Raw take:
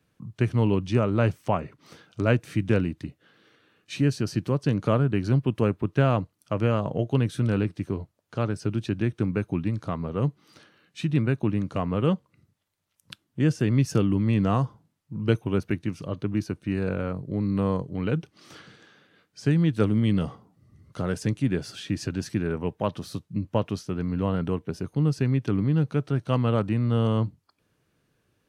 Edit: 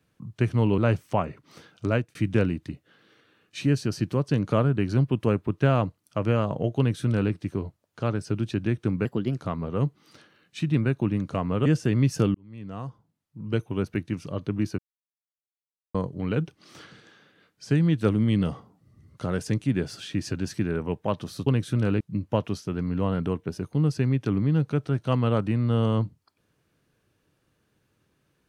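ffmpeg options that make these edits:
-filter_complex "[0:a]asplit=11[s0][s1][s2][s3][s4][s5][s6][s7][s8][s9][s10];[s0]atrim=end=0.782[s11];[s1]atrim=start=1.128:end=2.5,asetpts=PTS-STARTPTS,afade=t=out:st=1.102:d=0.27[s12];[s2]atrim=start=2.5:end=9.404,asetpts=PTS-STARTPTS,afade=t=in:d=0.004:c=hsin[s13];[s3]atrim=start=9.4:end=9.79,asetpts=PTS-STARTPTS,asetrate=52920,aresample=44100,atrim=end_sample=14332,asetpts=PTS-STARTPTS[s14];[s4]atrim=start=9.786:end=12.072[s15];[s5]atrim=start=13.408:end=14.1,asetpts=PTS-STARTPTS,afade=t=out:st=0.688:d=0.004:c=hsin[s16];[s6]atrim=start=14.1:end=16.54,asetpts=PTS-STARTPTS,afade=t=in:d=1.88,afade=t=out:st=2.436:d=0.004:c=hsin[s17];[s7]atrim=start=16.54:end=17.7,asetpts=PTS-STARTPTS,volume=0[s18];[s8]atrim=start=17.7:end=23.222,asetpts=PTS-STARTPTS,afade=t=in:d=0.004:c=hsin[s19];[s9]atrim=start=7.128:end=7.672[s20];[s10]atrim=start=23.218[s21];[s12][s13]concat=n=2:v=0:a=1[s22];[s11][s22]acrossfade=d=0.004:c1=hsin:c2=hsin[s23];[s23][s14]acrossfade=d=0.004:c1=hsin:c2=hsin[s24];[s24][s15]acrossfade=d=0.004:c1=hsin:c2=hsin[s25];[s16][s17][s18][s19]concat=n=4:v=0:a=1[s26];[s25][s26]acrossfade=d=0.004:c1=hsin:c2=hsin[s27];[s27][s20]acrossfade=d=0.004:c1=hsin:c2=hsin[s28];[s28][s21]acrossfade=d=0.004:c1=hsin:c2=hsin"

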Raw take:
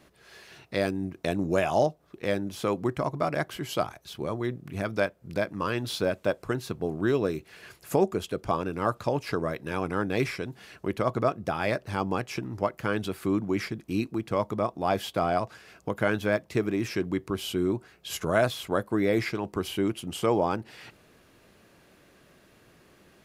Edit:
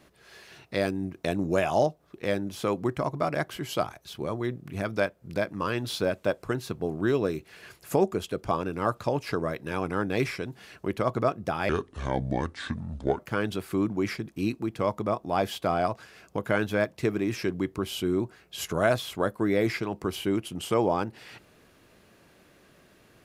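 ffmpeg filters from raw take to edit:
-filter_complex "[0:a]asplit=3[s0][s1][s2];[s0]atrim=end=11.694[s3];[s1]atrim=start=11.69:end=12.71,asetpts=PTS-STARTPTS,asetrate=29988,aresample=44100[s4];[s2]atrim=start=12.706[s5];[s3][s4]acrossfade=d=0.004:c1=hsin:c2=hsin[s6];[s6][s5]acrossfade=d=0.004:c1=hsin:c2=hsin"

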